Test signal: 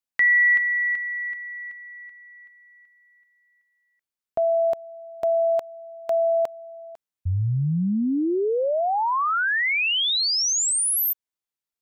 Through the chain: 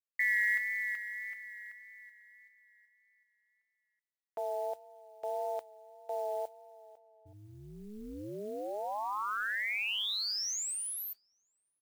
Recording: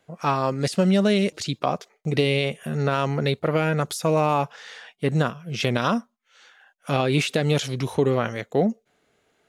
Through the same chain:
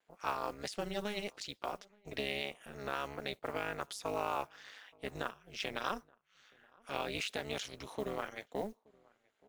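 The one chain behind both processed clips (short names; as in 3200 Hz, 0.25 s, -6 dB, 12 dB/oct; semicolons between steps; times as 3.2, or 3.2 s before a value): weighting filter A; vibrato 1.7 Hz 31 cents; modulation noise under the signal 25 dB; AM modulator 210 Hz, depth 90%; outdoor echo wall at 150 m, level -27 dB; gain -9 dB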